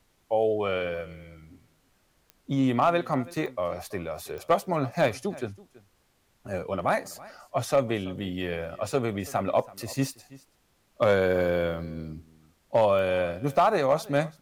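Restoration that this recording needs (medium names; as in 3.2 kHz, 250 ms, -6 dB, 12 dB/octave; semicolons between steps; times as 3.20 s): clip repair -13.5 dBFS; de-click; expander -59 dBFS, range -21 dB; inverse comb 329 ms -21 dB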